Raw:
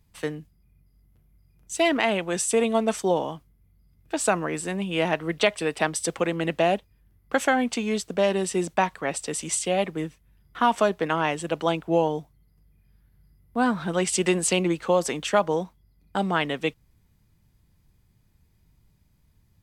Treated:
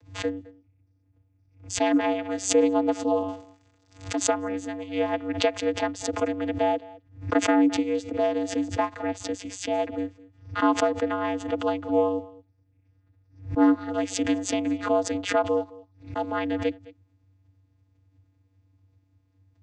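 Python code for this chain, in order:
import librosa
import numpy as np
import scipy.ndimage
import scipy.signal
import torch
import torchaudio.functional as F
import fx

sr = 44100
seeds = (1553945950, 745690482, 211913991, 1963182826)

p1 = fx.crossing_spikes(x, sr, level_db=-27.5, at=(3.28, 4.15))
p2 = fx.vocoder(p1, sr, bands=16, carrier='square', carrier_hz=95.4)
p3 = p2 + fx.echo_single(p2, sr, ms=213, db=-21.0, dry=0)
y = fx.pre_swell(p3, sr, db_per_s=140.0)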